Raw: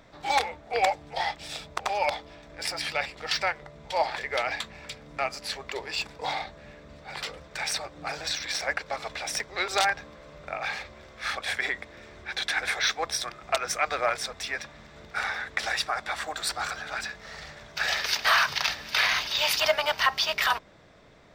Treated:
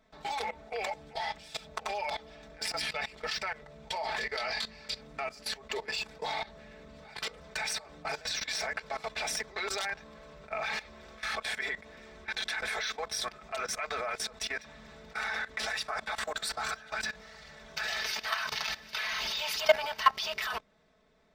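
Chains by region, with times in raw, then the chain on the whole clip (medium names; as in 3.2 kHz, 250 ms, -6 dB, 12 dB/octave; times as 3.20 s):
4.20–5.01 s: peaking EQ 4.6 kHz +12.5 dB 0.39 oct + doubling 22 ms -7 dB
whole clip: comb 4.6 ms, depth 81%; level held to a coarse grid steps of 17 dB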